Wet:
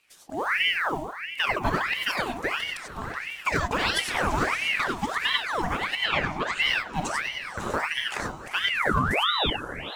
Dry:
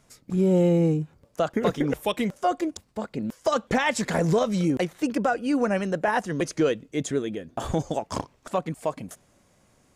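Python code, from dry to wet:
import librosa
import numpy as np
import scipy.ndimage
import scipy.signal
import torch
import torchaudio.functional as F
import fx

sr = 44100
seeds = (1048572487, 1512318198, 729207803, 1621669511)

y = fx.hpss(x, sr, part='harmonic', gain_db=-6)
y = fx.quant_float(y, sr, bits=4)
y = fx.lowpass(y, sr, hz=5100.0, slope=24, at=(5.96, 6.61))
y = fx.spec_paint(y, sr, seeds[0], shape='rise', start_s=8.69, length_s=0.81, low_hz=380.0, high_hz=1900.0, level_db=-25.0)
y = fx.echo_diffused(y, sr, ms=485, feedback_pct=50, wet_db=-12)
y = fx.rev_gated(y, sr, seeds[1], gate_ms=120, shape='rising', drr_db=0.0)
y = fx.ring_lfo(y, sr, carrier_hz=1500.0, swing_pct=70, hz=1.5)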